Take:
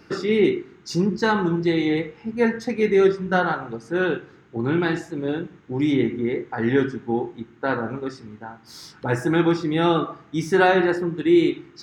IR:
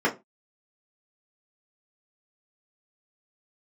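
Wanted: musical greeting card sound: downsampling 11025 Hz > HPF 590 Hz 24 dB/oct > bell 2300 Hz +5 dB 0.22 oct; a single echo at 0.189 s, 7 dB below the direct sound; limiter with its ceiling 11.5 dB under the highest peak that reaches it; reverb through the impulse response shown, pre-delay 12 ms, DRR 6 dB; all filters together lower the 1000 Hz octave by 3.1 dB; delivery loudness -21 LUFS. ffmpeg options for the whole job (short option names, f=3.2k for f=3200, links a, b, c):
-filter_complex "[0:a]equalizer=f=1k:t=o:g=-4,alimiter=limit=-19dB:level=0:latency=1,aecho=1:1:189:0.447,asplit=2[a][b];[1:a]atrim=start_sample=2205,adelay=12[c];[b][c]afir=irnorm=-1:irlink=0,volume=-20.5dB[d];[a][d]amix=inputs=2:normalize=0,aresample=11025,aresample=44100,highpass=f=590:w=0.5412,highpass=f=590:w=1.3066,equalizer=f=2.3k:t=o:w=0.22:g=5,volume=13.5dB"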